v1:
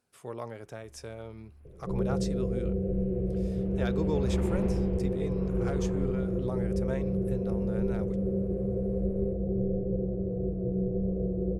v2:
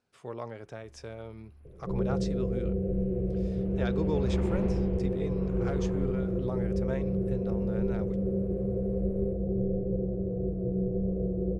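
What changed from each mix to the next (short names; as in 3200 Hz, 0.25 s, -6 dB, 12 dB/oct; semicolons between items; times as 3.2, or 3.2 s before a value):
speech: add LPF 5700 Hz 12 dB/oct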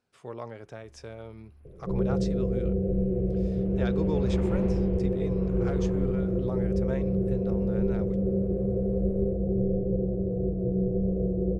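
second sound +3.0 dB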